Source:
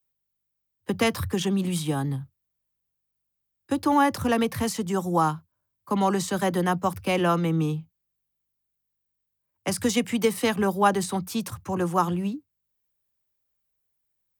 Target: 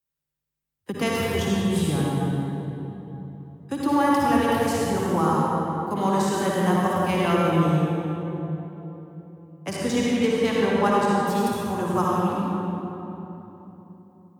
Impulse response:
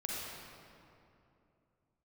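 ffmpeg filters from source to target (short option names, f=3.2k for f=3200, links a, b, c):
-filter_complex "[0:a]asettb=1/sr,asplit=3[a][b][c];[a]atrim=end=9.714[d];[b]atrim=start=9.71:end=11.22,asetpts=PTS-STARTPTS,afade=t=in:d=0.004:c=qsin,afade=t=out:st=1.506:d=0.004:c=qsin,adynamicsmooth=sensitivity=5.5:basefreq=3.2k[e];[c]atrim=start=11.216[f];[d][e]acrossfade=d=0.004:c1=hsin:c2=qsin[g];[g][f]acrossfade=d=0.004:c1=qsin:c2=hsin[h];[1:a]atrim=start_sample=2205,asetrate=33075,aresample=44100[i];[h][i]afir=irnorm=-1:irlink=0,volume=-2.5dB"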